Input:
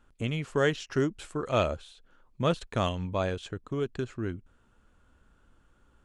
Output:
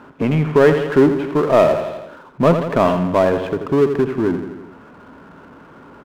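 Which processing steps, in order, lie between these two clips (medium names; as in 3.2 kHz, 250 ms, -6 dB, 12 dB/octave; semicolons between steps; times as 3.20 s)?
cabinet simulation 150–2400 Hz, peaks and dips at 160 Hz +7 dB, 270 Hz +7 dB, 410 Hz +6 dB, 640 Hz +6 dB, 970 Hz +8 dB; feedback delay 84 ms, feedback 51%, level -11.5 dB; power-law waveshaper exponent 0.7; trim +6 dB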